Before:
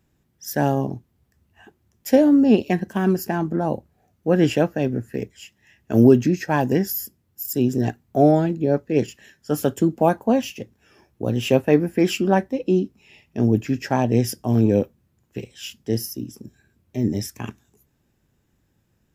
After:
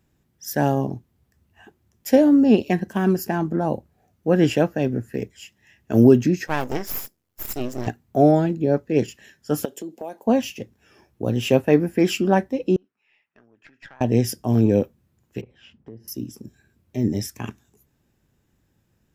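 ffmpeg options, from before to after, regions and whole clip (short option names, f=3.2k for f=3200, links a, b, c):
-filter_complex "[0:a]asettb=1/sr,asplit=3[a][b][c];[a]atrim=end=6.474[d];[b]atrim=start=6.47:end=7.87,asetpts=PTS-STARTPTS,afade=t=in:d=0.004:c=qsin,afade=t=out:st=1.396:d=0.004:c=qsin,bass=f=250:g=-9,treble=f=4k:g=2,aeval=exprs='max(val(0),0)':c=same[e];[c]atrim=start=7.866[f];[d][e]acrossfade=d=0.004:c1=hsin:c2=qsin[g];[g][f]acrossfade=d=0.004:c1=qsin:c2=hsin,asettb=1/sr,asplit=3[h][i][j];[h]atrim=end=9.654[k];[i]atrim=start=9.65:end=10.27,asetpts=PTS-STARTPTS,afade=t=in:d=0.004:c=qsin,afade=t=out:st=0.616:d=0.004:c=qsin,highpass=400,equalizer=f=1.3k:t=o:w=0.84:g=-12.5,acompressor=threshold=-32dB:ratio=3:attack=3.2:release=140:knee=1:detection=peak[l];[j]atrim=start=10.266[m];[k][l]acrossfade=d=0.004:c1=hsin:c2=qsin[n];[n][m]acrossfade=d=0.004:c1=qsin:c2=hsin,asettb=1/sr,asplit=3[o][p][q];[o]atrim=end=12.764[r];[p]atrim=start=12.76:end=14.01,asetpts=PTS-STARTPTS,afade=t=in:d=0.004:c=qsin,afade=t=out:st=1.246:d=0.004:c=qsin,acompressor=threshold=-27dB:ratio=10:attack=3.2:release=140:knee=1:detection=peak,bandpass=f=1.5k:t=q:w=2.2,aeval=exprs='(tanh(39.8*val(0)+0.8)-tanh(0.8))/39.8':c=same[s];[q]atrim=start=14.006[t];[r][s]acrossfade=d=0.004:c1=hsin:c2=qsin[u];[u][t]acrossfade=d=0.004:c1=qsin:c2=hsin,asettb=1/sr,asplit=3[v][w][x];[v]atrim=end=15.414[y];[w]atrim=start=15.41:end=16.08,asetpts=PTS-STARTPTS,afade=t=in:d=0.004:c=qsin,afade=t=out:st=0.666:d=0.004:c=qsin,lowpass=1.3k,acompressor=threshold=-37dB:ratio=6:attack=3.2:release=140:knee=1:detection=peak[z];[x]atrim=start=16.076[aa];[y][z]acrossfade=d=0.004:c1=hsin:c2=qsin[ab];[ab][aa]acrossfade=d=0.004:c1=qsin:c2=hsin"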